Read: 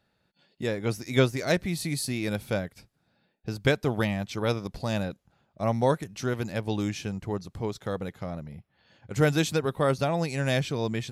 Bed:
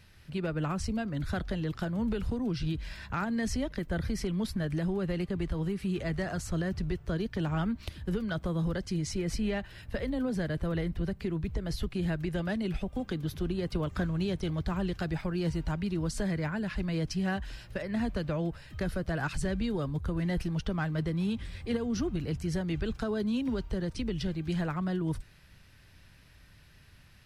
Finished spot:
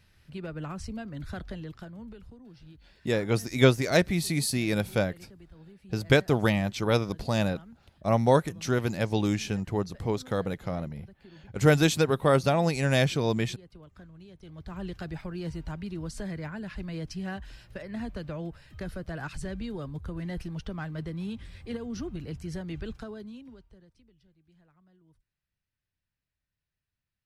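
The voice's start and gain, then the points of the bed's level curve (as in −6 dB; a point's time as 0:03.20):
2.45 s, +2.5 dB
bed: 0:01.52 −5 dB
0:02.43 −19 dB
0:14.34 −19 dB
0:14.84 −4.5 dB
0:22.91 −4.5 dB
0:24.17 −32 dB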